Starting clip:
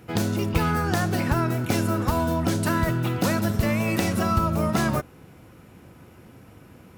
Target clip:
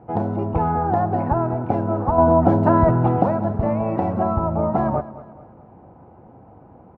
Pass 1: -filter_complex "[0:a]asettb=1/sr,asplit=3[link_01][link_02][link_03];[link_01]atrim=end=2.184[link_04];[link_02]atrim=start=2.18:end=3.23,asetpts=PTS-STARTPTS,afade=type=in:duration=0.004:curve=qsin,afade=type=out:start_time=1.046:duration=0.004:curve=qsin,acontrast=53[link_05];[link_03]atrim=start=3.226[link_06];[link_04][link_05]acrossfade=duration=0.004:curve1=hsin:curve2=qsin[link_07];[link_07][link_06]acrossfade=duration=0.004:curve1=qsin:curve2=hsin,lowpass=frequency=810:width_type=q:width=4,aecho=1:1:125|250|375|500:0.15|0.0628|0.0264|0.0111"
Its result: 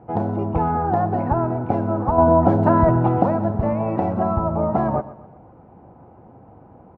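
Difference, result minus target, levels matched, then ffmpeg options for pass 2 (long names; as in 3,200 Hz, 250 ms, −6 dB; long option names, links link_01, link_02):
echo 90 ms early
-filter_complex "[0:a]asettb=1/sr,asplit=3[link_01][link_02][link_03];[link_01]atrim=end=2.184[link_04];[link_02]atrim=start=2.18:end=3.23,asetpts=PTS-STARTPTS,afade=type=in:duration=0.004:curve=qsin,afade=type=out:start_time=1.046:duration=0.004:curve=qsin,acontrast=53[link_05];[link_03]atrim=start=3.226[link_06];[link_04][link_05]acrossfade=duration=0.004:curve1=hsin:curve2=qsin[link_07];[link_07][link_06]acrossfade=duration=0.004:curve1=qsin:curve2=hsin,lowpass=frequency=810:width_type=q:width=4,aecho=1:1:215|430|645|860:0.15|0.0628|0.0264|0.0111"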